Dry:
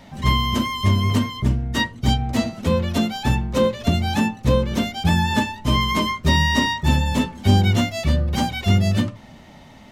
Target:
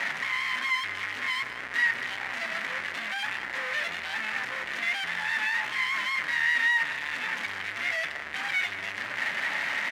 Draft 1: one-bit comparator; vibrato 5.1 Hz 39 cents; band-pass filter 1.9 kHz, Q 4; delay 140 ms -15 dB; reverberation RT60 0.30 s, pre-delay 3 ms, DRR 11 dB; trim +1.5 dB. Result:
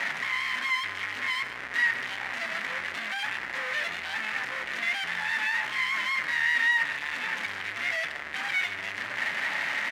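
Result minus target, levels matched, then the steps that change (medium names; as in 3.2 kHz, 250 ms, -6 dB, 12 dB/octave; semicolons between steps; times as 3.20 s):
echo 52 ms early
change: delay 192 ms -15 dB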